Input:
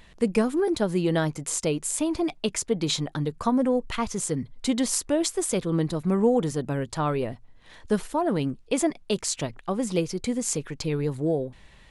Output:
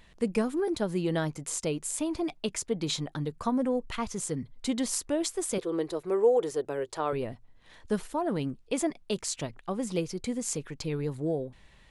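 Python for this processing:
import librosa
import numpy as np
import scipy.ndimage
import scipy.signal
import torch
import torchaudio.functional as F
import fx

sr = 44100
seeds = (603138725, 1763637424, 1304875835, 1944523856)

y = fx.low_shelf_res(x, sr, hz=290.0, db=-10.0, q=3.0, at=(5.58, 7.13))
y = y * 10.0 ** (-5.0 / 20.0)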